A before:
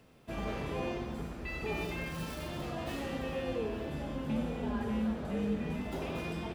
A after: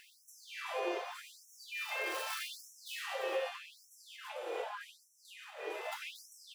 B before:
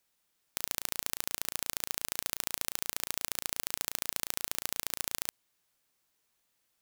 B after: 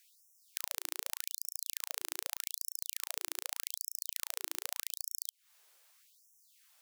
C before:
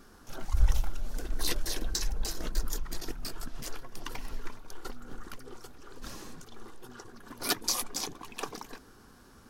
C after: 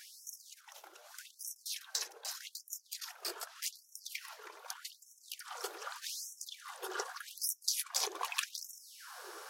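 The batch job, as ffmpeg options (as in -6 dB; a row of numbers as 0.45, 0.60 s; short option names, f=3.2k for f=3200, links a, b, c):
-af "acompressor=threshold=-40dB:ratio=20,afftfilt=real='re*gte(b*sr/1024,330*pow(5500/330,0.5+0.5*sin(2*PI*0.83*pts/sr)))':imag='im*gte(b*sr/1024,330*pow(5500/330,0.5+0.5*sin(2*PI*0.83*pts/sr)))':win_size=1024:overlap=0.75,volume=11dB"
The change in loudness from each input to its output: -3.5, -4.0, -5.0 LU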